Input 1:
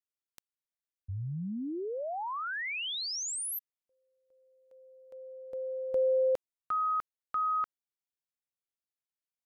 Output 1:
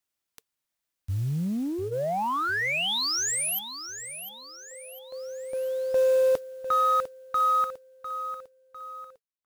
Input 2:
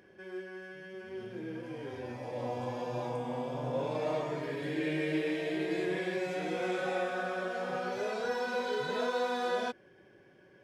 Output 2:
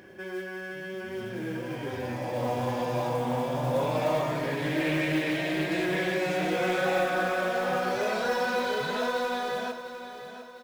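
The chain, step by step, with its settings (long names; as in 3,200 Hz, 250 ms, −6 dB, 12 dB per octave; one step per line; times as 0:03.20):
fade-out on the ending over 2.43 s
notch filter 450 Hz, Q 12
dynamic equaliser 360 Hz, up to −4 dB, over −49 dBFS, Q 2.1
in parallel at −4 dB: soft clipping −37.5 dBFS
on the sum: noise that follows the level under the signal 24 dB
repeating echo 701 ms, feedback 44%, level −11.5 dB
highs frequency-modulated by the lows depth 0.12 ms
level +5.5 dB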